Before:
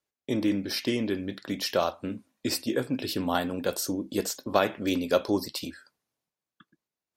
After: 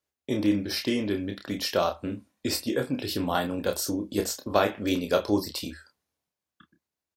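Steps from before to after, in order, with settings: peaking EQ 78 Hz +12 dB 0.34 oct; doubling 29 ms -6 dB

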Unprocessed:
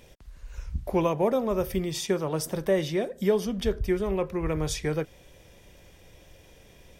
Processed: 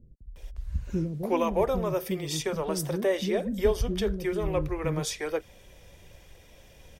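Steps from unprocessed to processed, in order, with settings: phaser 1 Hz, delay 4.2 ms, feedback 26%; bands offset in time lows, highs 360 ms, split 310 Hz

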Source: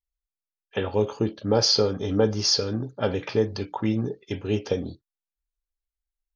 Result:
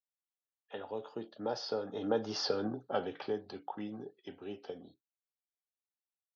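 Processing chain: Doppler pass-by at 2.54 s, 13 m/s, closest 3.6 m; cabinet simulation 220–4400 Hz, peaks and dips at 750 Hz +9 dB, 1.4 kHz +3 dB, 2.3 kHz -7 dB; three bands compressed up and down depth 40%; trim -3.5 dB

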